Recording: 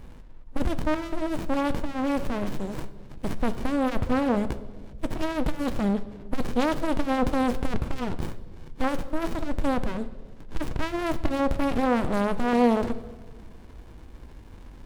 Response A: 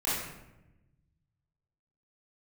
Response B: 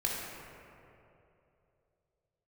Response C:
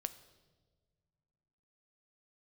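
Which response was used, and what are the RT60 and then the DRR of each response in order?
C; 0.95 s, 2.9 s, non-exponential decay; −11.0, −4.5, 11.0 decibels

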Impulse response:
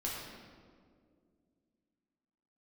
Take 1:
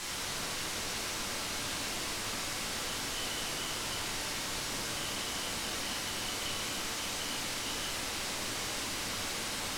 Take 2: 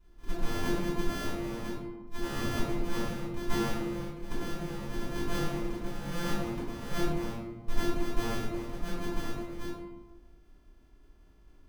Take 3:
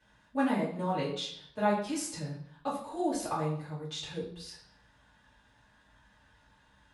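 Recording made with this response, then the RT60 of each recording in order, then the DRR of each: 1; 2.1, 1.1, 0.60 seconds; −5.0, −11.5, −10.0 decibels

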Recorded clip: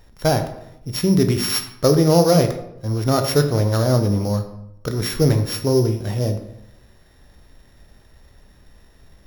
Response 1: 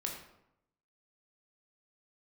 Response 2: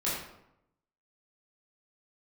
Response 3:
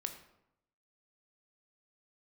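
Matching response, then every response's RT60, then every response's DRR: 3; 0.80, 0.80, 0.80 seconds; 0.0, −9.0, 6.0 decibels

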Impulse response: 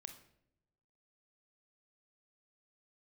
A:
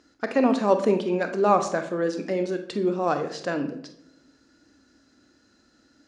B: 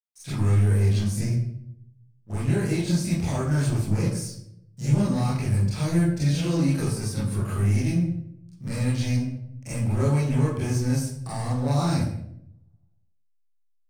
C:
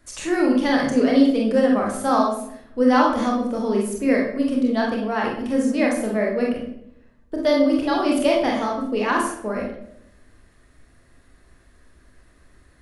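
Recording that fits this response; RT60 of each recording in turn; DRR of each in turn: A; non-exponential decay, 0.70 s, 0.75 s; 7.0, −11.0, −2.5 decibels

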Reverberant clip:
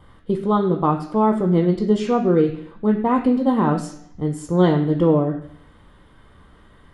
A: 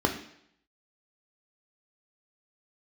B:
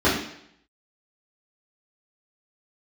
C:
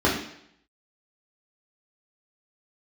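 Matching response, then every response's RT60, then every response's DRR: A; 0.70, 0.70, 0.70 seconds; 3.5, −10.0, −5.5 decibels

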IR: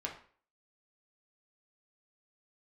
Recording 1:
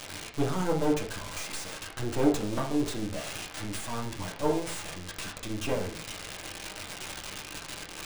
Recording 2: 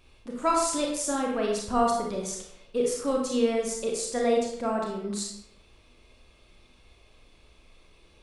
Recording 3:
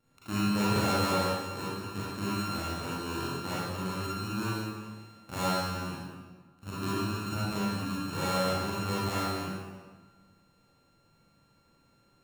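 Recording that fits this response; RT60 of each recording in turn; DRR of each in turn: 1; 0.45, 0.80, 1.4 seconds; −1.5, −1.0, −9.0 decibels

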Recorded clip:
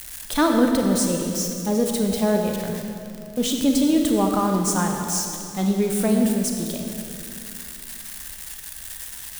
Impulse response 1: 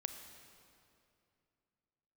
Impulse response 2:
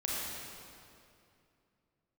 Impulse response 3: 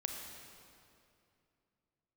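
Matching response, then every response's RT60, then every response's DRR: 3; 2.6, 2.6, 2.6 seconds; 6.5, −6.0, 2.0 decibels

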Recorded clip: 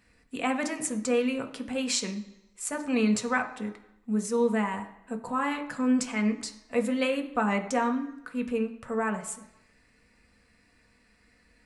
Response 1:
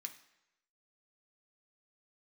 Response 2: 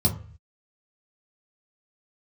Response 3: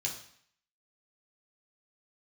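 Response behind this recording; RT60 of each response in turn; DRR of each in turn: 1; non-exponential decay, 0.45 s, 0.60 s; 4.0, −1.5, −2.5 decibels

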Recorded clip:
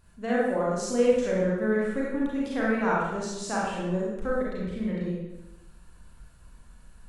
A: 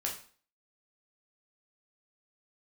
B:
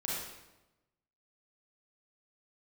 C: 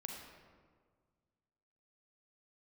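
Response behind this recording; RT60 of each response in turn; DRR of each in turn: B; 0.45, 1.0, 1.7 seconds; −2.0, −6.0, 0.5 decibels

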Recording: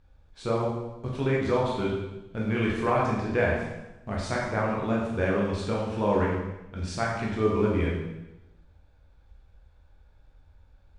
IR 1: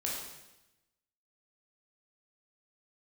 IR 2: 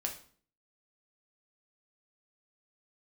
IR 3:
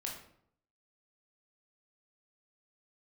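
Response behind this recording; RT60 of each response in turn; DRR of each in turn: 1; 0.95, 0.50, 0.65 seconds; −4.5, 1.0, −2.0 decibels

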